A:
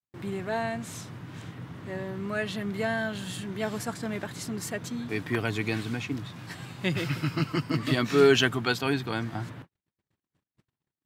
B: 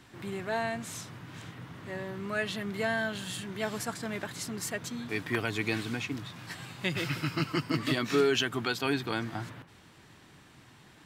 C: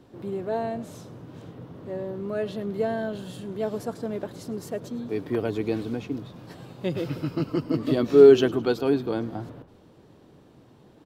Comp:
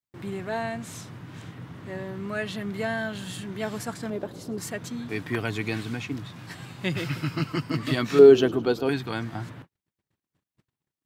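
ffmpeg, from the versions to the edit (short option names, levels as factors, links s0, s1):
-filter_complex "[2:a]asplit=2[s0][s1];[0:a]asplit=3[s2][s3][s4];[s2]atrim=end=4.102[s5];[s0]atrim=start=4.098:end=4.582[s6];[s3]atrim=start=4.578:end=8.192[s7];[s1]atrim=start=8.188:end=8.892[s8];[s4]atrim=start=8.888[s9];[s5][s6]acrossfade=d=0.004:c1=hsin:c2=hsin[s10];[s10][s7]acrossfade=d=0.004:c1=hsin:c2=hsin[s11];[s11][s8]acrossfade=d=0.004:c1=hsin:c2=hsin[s12];[s12][s9]acrossfade=d=0.004:c1=hsin:c2=hsin"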